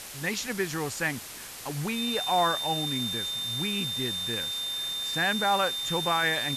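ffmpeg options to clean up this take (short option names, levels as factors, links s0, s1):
-af "bandreject=f=3600:w=30,afftdn=nr=30:nf=-38"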